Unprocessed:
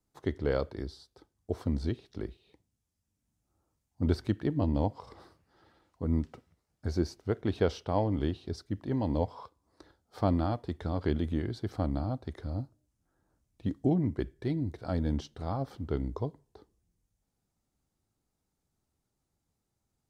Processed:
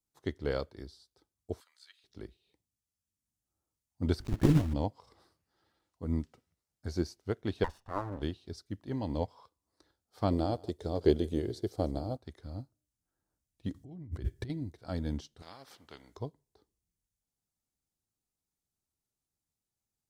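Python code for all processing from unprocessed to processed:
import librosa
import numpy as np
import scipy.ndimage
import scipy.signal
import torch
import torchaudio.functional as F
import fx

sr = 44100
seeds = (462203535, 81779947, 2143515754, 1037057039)

y = fx.chain(x, sr, fx.highpass(hz=1300.0, slope=24),
    fx.notch(hz=5600.0, q=5.5), at=(1.6, 2.04))
y = fx.chain(y, sr, fx.block_float(bits=3),
    fx.tilt_eq(slope=-3.5),
    fx.over_compress(threshold_db=-22.0, ratio=-0.5), at=(4.2, 4.74))
y = fx.chain(y, sr, fx.lower_of_two(delay_ms=1.1),
    fx.high_shelf_res(hz=2000.0, db=-9.5, q=1.5), at=(7.64, 8.22))
y = fx.chain(y, sr, fx.curve_eq(hz=(270.0, 420.0, 1200.0, 1900.0, 6500.0), db=(0, 11, -5, -5, 5)),
    fx.echo_single(ms=150, db=-16.5), at=(10.31, 12.17))
y = fx.chain(y, sr, fx.peak_eq(hz=91.0, db=14.5, octaves=1.2),
    fx.over_compress(threshold_db=-34.0, ratio=-1.0), at=(13.74, 14.5))
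y = fx.chain(y, sr, fx.highpass(hz=620.0, slope=6),
    fx.high_shelf(hz=2700.0, db=-11.5),
    fx.spectral_comp(ratio=2.0), at=(15.42, 16.17))
y = fx.high_shelf(y, sr, hz=3300.0, db=10.5)
y = fx.upward_expand(y, sr, threshold_db=-45.0, expansion=1.5)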